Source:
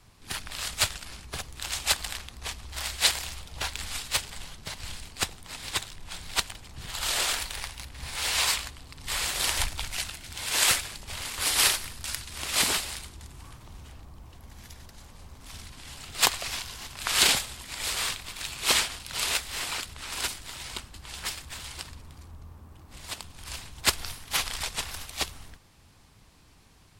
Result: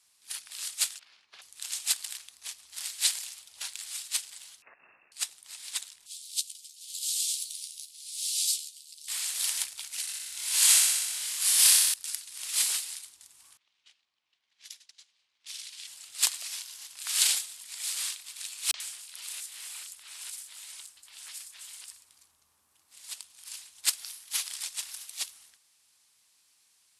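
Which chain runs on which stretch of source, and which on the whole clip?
0.99–1.42 HPF 330 Hz 6 dB/oct + air absorption 260 m
4.62–5.12 tilt +4 dB/oct + inverted band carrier 2700 Hz + upward compressor, threshold -44 dBFS
6.06–9.08 upward compressor, threshold -31 dBFS + inverse Chebyshev high-pass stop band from 1300 Hz, stop band 50 dB + doubler 13 ms -6 dB
10.01–11.94 doubler 26 ms -2 dB + flutter echo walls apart 10.7 m, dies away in 1.4 s
13.57–15.87 weighting filter D + gate -45 dBFS, range -15 dB + low-pass opened by the level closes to 2500 Hz, open at -39 dBFS
18.71–22.09 compressor 2.5:1, threshold -34 dBFS + three bands offset in time lows, mids, highs 30/90 ms, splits 200/5000 Hz
whole clip: steep low-pass 12000 Hz 36 dB/oct; differentiator

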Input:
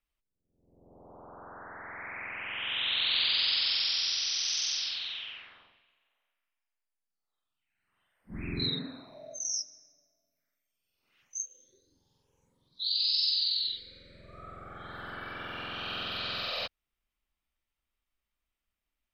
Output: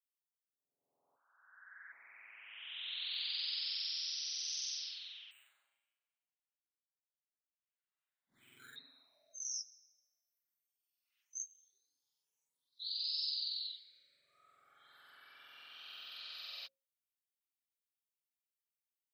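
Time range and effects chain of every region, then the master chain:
1.16–1.92 resonant high-pass 1600 Hz, resonance Q 7.8 + tilt -4 dB/oct
5.31–8.76 air absorption 230 m + flutter echo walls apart 6.5 m, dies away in 0.5 s + decimation joined by straight lines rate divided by 8×
whole clip: differentiator; notches 60/120/180/240/300/360/420/480/540 Hz; comb 7.2 ms, depth 33%; gain -6.5 dB

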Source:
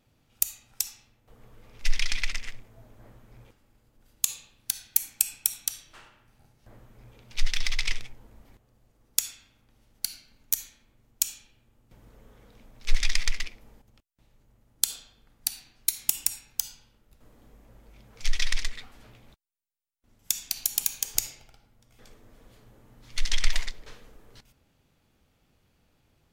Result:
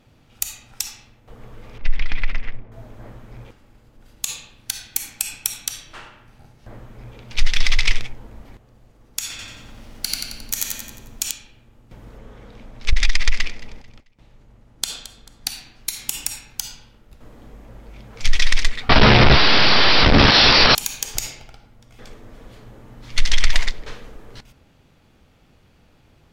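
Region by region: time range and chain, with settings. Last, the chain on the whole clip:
1.78–2.72 compressor 3:1, threshold -22 dBFS + tape spacing loss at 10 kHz 38 dB
9.3–11.31 G.711 law mismatch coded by mu + feedback echo 89 ms, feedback 47%, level -3 dB
12.18–15.49 high shelf 12000 Hz -10.5 dB + feedback echo 0.22 s, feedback 32%, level -20 dB + core saturation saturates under 58 Hz
18.89–20.75 zero-crossing step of -17.5 dBFS + doubler 14 ms -4 dB + careless resampling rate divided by 4×, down none, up filtered
whole clip: high shelf 7300 Hz -11 dB; maximiser +15 dB; gain -2.5 dB

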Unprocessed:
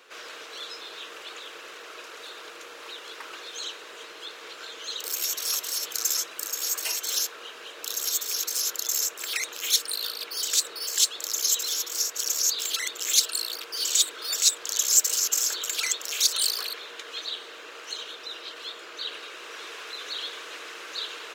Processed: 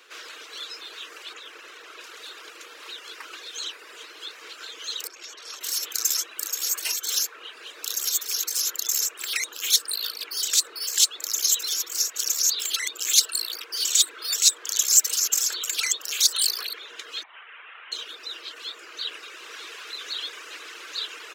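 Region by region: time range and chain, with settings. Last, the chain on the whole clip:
1.33–2.01 brick-wall FIR high-pass 160 Hz + high shelf 4400 Hz -5 dB + notch 4600 Hz, Q 25
5.07–5.61 HPF 280 Hz + tape spacing loss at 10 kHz 24 dB
17.23–17.92 delta modulation 16 kbps, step -40.5 dBFS + Butterworth band-pass 1900 Hz, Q 0.53
whole clip: reverb removal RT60 0.69 s; HPF 270 Hz 24 dB/oct; bell 640 Hz -7.5 dB 1.4 oct; gain +3 dB

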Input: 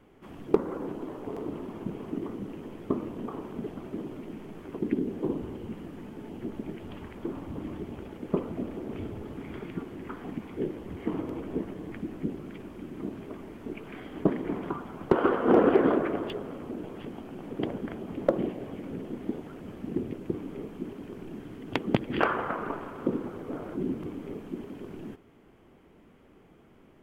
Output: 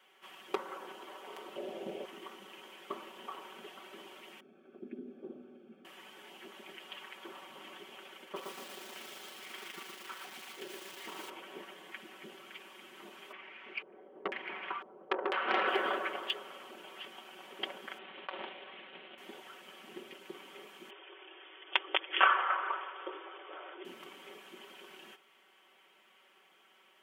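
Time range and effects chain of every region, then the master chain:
1.56–2.05 resonant low shelf 780 Hz +9.5 dB, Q 3 + Doppler distortion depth 0.22 ms
4.4–5.85 running mean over 45 samples + bell 250 Hz +13.5 dB 0.29 oct
8.24–11.29 AM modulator 26 Hz, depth 25% + lo-fi delay 0.118 s, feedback 55%, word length 8-bit, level -4 dB
13.32–15.68 LFO low-pass square 1 Hz 480–2400 Hz + tube stage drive 15 dB, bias 0.45
17.98–19.18 CVSD 16 kbps + core saturation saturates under 1400 Hz
20.9–23.85 brick-wall FIR band-pass 280–3600 Hz + dynamic EQ 1200 Hz, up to +4 dB, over -42 dBFS, Q 1.8
whole clip: Bessel high-pass 1400 Hz, order 2; bell 3100 Hz +6.5 dB 0.44 oct; comb 5.3 ms, depth 72%; gain +2 dB

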